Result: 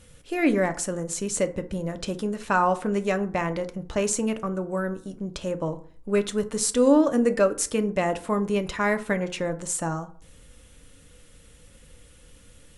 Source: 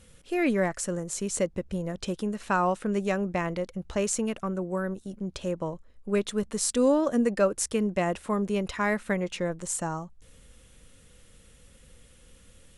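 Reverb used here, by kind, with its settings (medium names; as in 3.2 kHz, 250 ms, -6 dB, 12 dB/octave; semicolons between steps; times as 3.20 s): FDN reverb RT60 0.48 s, low-frequency decay 1.1×, high-frequency decay 0.5×, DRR 8 dB; trim +2.5 dB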